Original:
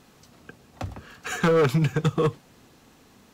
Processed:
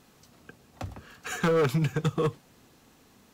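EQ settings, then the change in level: high shelf 8700 Hz +4.5 dB; -4.0 dB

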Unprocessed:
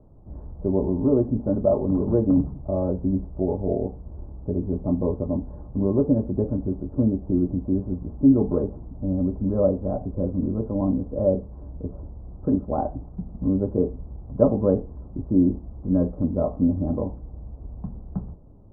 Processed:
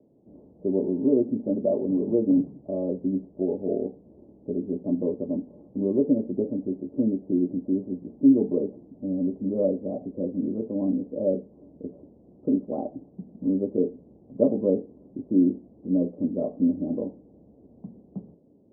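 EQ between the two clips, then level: Butterworth band-pass 350 Hz, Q 0.94; air absorption 360 m; 0.0 dB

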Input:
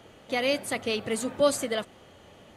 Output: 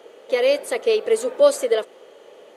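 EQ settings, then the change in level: resonant high-pass 450 Hz, resonance Q 4; notch 740 Hz, Q 14; +1.5 dB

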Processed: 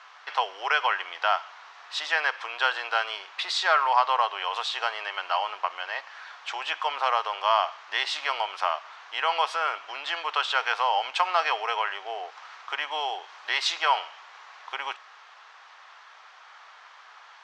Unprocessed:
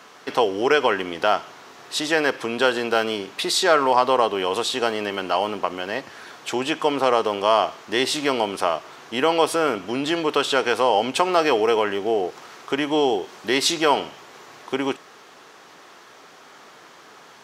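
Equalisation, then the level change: HPF 820 Hz 24 dB/oct; air absorption 160 m; 0.0 dB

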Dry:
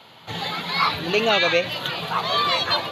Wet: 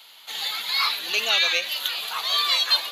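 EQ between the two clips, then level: steep high-pass 180 Hz 48 dB/oct; differentiator; +8.5 dB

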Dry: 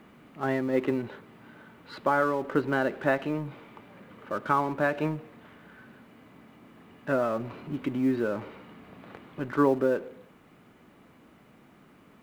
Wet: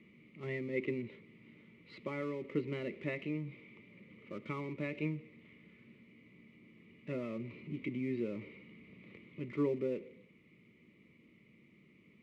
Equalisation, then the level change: double band-pass 760 Hz, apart 3 oct; low shelf 350 Hz +9 dB; fixed phaser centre 650 Hz, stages 4; +10.0 dB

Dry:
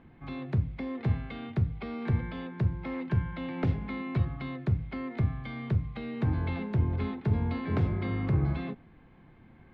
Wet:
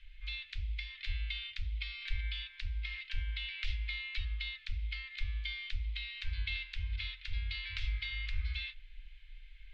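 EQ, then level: inverse Chebyshev band-stop 150–770 Hz, stop band 70 dB; air absorption 120 m; bell 140 Hz -7.5 dB 1.3 oct; +16.0 dB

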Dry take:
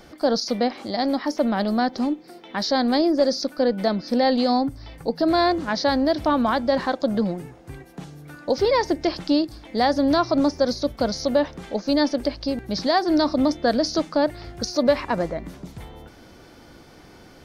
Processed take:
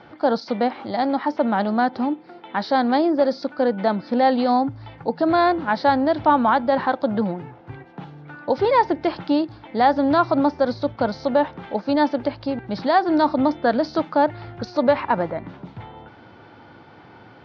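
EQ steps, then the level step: speaker cabinet 110–3600 Hz, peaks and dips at 110 Hz +10 dB, 880 Hz +9 dB, 1400 Hz +5 dB; 0.0 dB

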